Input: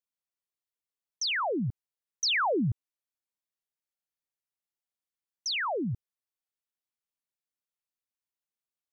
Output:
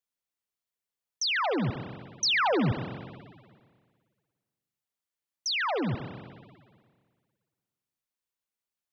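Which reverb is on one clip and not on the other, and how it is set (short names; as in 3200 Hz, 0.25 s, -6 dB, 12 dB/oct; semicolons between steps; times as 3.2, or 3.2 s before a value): spring tank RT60 1.8 s, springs 55/59 ms, chirp 40 ms, DRR 7.5 dB; gain +1.5 dB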